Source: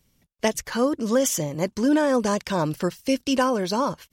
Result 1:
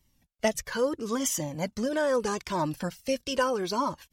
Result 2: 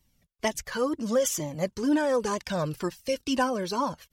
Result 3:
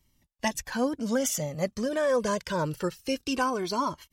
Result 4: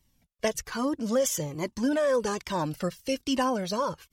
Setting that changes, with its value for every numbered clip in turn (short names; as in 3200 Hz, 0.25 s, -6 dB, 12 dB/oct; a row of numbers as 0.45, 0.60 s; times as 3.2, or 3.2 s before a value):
cascading flanger, rate: 0.78, 2.1, 0.25, 1.2 Hz